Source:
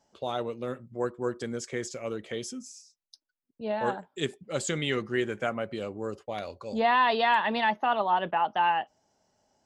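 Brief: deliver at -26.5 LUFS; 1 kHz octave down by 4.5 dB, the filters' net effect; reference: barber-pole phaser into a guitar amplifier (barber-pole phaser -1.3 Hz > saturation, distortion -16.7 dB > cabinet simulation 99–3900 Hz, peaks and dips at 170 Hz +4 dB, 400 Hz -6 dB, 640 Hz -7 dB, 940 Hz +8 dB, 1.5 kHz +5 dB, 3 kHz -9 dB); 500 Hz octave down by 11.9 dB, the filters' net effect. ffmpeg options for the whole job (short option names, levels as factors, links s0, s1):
-filter_complex "[0:a]equalizer=f=500:t=o:g=-8,equalizer=f=1000:t=o:g=-8,asplit=2[s0][s1];[s1]afreqshift=-1.3[s2];[s0][s2]amix=inputs=2:normalize=1,asoftclip=threshold=0.0398,highpass=99,equalizer=f=170:t=q:w=4:g=4,equalizer=f=400:t=q:w=4:g=-6,equalizer=f=640:t=q:w=4:g=-7,equalizer=f=940:t=q:w=4:g=8,equalizer=f=1500:t=q:w=4:g=5,equalizer=f=3000:t=q:w=4:g=-9,lowpass=f=3900:w=0.5412,lowpass=f=3900:w=1.3066,volume=3.98"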